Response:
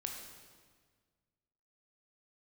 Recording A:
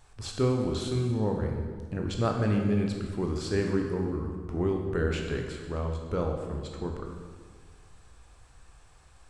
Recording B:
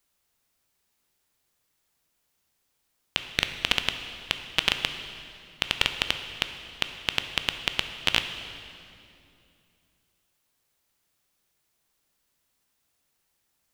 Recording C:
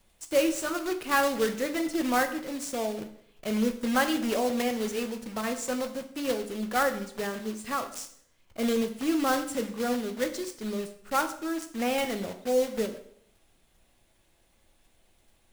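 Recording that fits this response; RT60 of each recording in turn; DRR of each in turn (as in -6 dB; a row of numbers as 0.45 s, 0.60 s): A; 1.6 s, 2.6 s, 0.65 s; 1.5 dB, 7.5 dB, 6.5 dB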